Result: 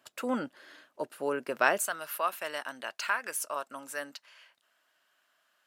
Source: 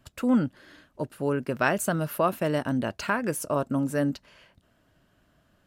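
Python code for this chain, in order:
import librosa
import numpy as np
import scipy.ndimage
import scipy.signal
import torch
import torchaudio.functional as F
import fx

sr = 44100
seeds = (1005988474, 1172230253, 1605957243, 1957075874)

y = fx.highpass(x, sr, hz=fx.steps((0.0, 470.0), (1.86, 1100.0)), slope=12)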